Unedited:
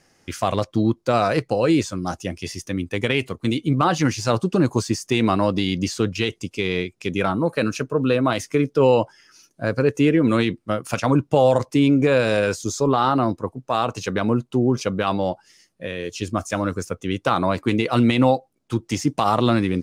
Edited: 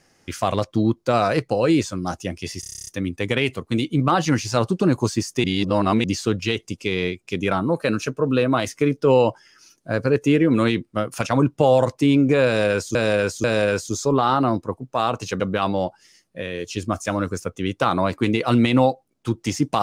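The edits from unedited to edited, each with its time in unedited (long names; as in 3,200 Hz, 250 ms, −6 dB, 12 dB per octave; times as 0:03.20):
0:02.60: stutter 0.03 s, 10 plays
0:05.17–0:05.77: reverse
0:12.19–0:12.68: repeat, 3 plays
0:14.15–0:14.85: remove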